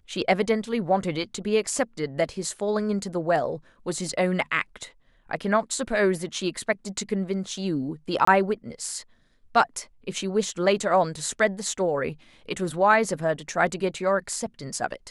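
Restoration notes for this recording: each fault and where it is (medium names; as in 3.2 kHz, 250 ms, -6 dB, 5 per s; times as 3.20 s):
8.25–8.27 s: dropout 24 ms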